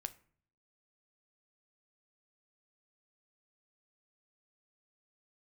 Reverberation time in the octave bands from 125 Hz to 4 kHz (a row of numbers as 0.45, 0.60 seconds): 0.85, 0.75, 0.55, 0.50, 0.45, 0.30 seconds